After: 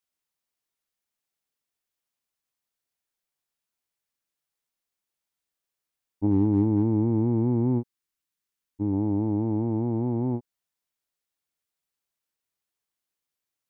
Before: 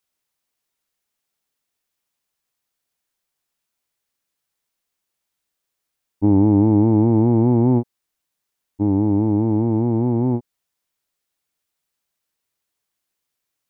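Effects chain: gate -10 dBFS, range -16 dB; 6.27–8.93 bell 680 Hz -8 dB 0.7 oct; gain +8.5 dB

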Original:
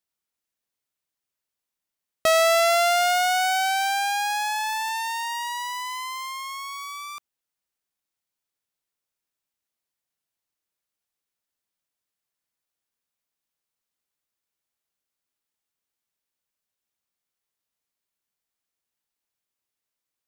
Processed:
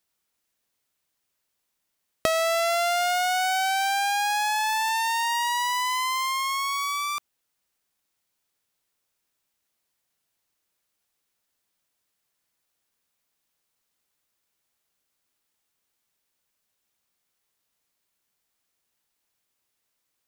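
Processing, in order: compressor 6:1, threshold -31 dBFS, peak gain reduction 13.5 dB; gain +8 dB

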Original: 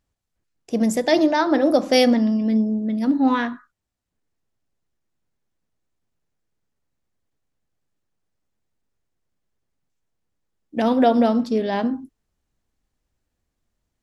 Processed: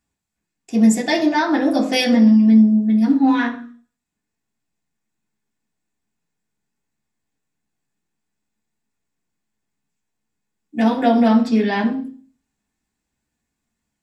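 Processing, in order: 11.26–11.78 bell 1900 Hz +7 dB 1.8 oct; reverb RT60 0.45 s, pre-delay 3 ms, DRR -4 dB

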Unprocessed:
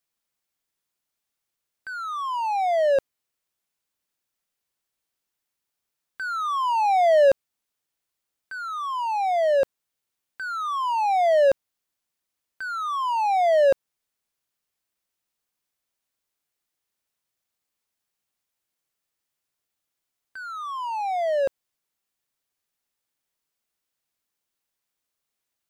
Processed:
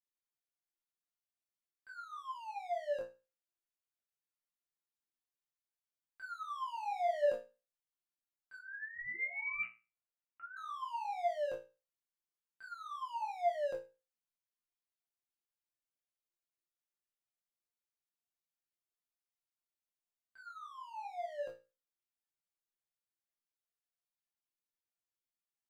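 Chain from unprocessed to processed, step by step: chorus voices 2, 0.5 Hz, delay 22 ms, depth 3.6 ms; 8.58–10.57 inverted band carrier 2900 Hz; resonator bank A#2 fifth, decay 0.29 s; gain -1.5 dB

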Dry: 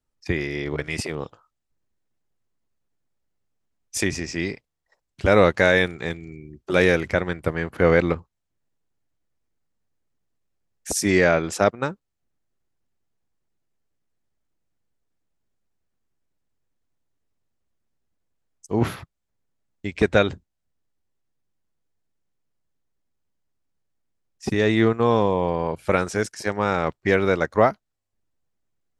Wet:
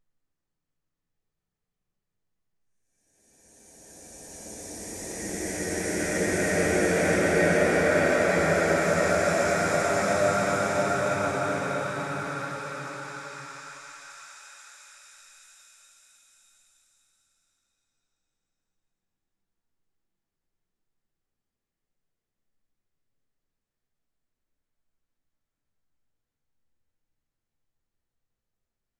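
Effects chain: grains, grains 13/s, spray 0.1 s, pitch spread up and down by 0 st; delay with a stepping band-pass 0.202 s, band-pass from 1400 Hz, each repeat 0.7 oct, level -4 dB; Paulstretch 5.5×, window 1.00 s, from 9.81

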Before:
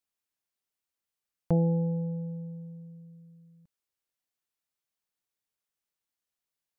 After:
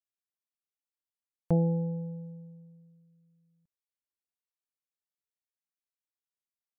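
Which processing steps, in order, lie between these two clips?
upward expander 1.5:1, over -49 dBFS

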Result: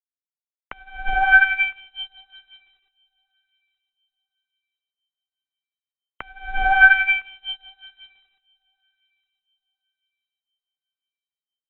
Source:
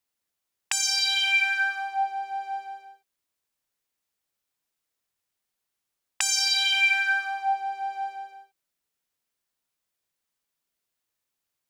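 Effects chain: tilt shelf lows -7 dB, about 1100 Hz; in parallel at -0.5 dB: limiter -13.5 dBFS, peak gain reduction 8 dB; on the sum: requantised 6-bit, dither none; on a send: darkening echo 1.01 s, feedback 42%, low-pass 1300 Hz, level -13 dB; on the sum: inverted band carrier 3900 Hz; upward expander 2.5:1, over -32 dBFS; gain +3.5 dB

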